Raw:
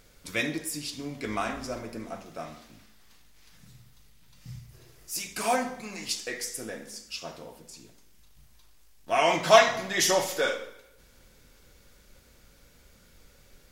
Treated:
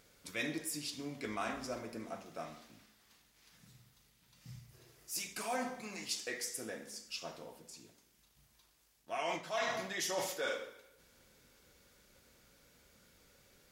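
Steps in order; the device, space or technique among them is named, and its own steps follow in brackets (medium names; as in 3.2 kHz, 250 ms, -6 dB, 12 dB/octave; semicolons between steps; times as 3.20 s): compression on the reversed sound (reverse; compression 16:1, threshold -27 dBFS, peak gain reduction 17 dB; reverse); high-pass 130 Hz 6 dB/octave; trim -5.5 dB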